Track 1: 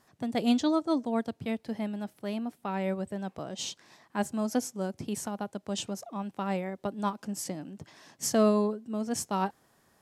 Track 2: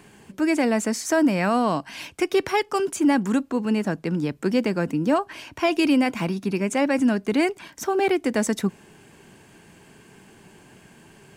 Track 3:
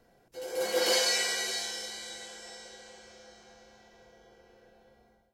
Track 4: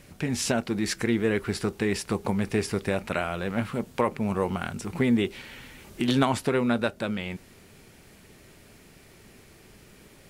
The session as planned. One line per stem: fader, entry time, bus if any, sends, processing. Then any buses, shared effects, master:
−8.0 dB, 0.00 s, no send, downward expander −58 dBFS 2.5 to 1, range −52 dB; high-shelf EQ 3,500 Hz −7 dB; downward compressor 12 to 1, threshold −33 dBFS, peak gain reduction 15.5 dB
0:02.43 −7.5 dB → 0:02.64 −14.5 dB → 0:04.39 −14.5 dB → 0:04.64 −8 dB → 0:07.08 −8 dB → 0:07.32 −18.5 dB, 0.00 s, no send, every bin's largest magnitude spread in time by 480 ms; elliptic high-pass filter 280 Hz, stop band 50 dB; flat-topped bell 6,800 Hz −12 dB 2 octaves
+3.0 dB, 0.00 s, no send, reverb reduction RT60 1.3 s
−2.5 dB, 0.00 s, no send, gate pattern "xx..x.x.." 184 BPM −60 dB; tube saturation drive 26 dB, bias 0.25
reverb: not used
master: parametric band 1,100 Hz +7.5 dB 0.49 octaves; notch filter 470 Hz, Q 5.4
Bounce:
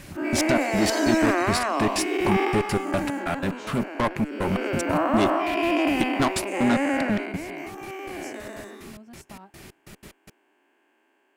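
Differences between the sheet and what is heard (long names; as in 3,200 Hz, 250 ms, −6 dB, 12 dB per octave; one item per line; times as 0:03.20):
stem 3 +3.0 dB → −6.0 dB
stem 4 −2.5 dB → +9.0 dB
master: missing parametric band 1,100 Hz +7.5 dB 0.49 octaves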